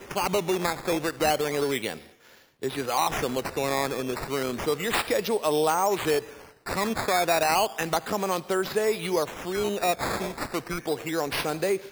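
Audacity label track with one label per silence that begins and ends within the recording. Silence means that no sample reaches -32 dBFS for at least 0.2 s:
1.960000	2.630000	silence
6.190000	6.660000	silence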